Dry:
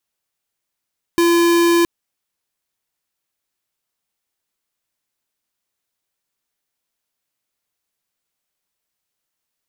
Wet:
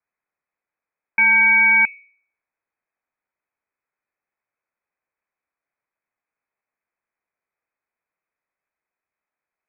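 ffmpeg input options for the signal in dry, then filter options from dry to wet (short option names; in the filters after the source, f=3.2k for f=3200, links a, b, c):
-f lavfi -i "aevalsrc='0.211*(2*lt(mod(341*t,1),0.5)-1)':d=0.67:s=44100"
-af "bandreject=f=59.93:t=h:w=4,bandreject=f=119.86:t=h:w=4,bandreject=f=179.79:t=h:w=4,bandreject=f=239.72:t=h:w=4,bandreject=f=299.65:t=h:w=4,bandreject=f=359.58:t=h:w=4,bandreject=f=419.51:t=h:w=4,lowpass=f=2.2k:t=q:w=0.5098,lowpass=f=2.2k:t=q:w=0.6013,lowpass=f=2.2k:t=q:w=0.9,lowpass=f=2.2k:t=q:w=2.563,afreqshift=-2600"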